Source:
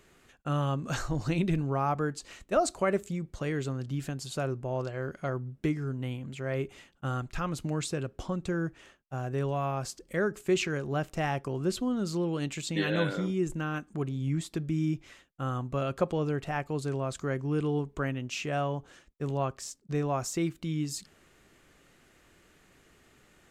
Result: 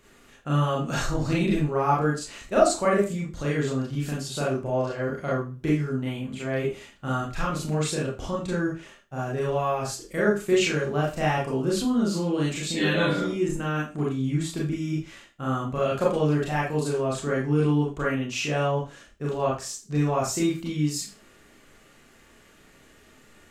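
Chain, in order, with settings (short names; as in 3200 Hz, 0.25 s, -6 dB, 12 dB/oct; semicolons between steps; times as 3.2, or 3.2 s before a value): 15.94–16.96 high shelf 6500 Hz +5 dB; Schroeder reverb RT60 0.3 s, combs from 27 ms, DRR -5.5 dB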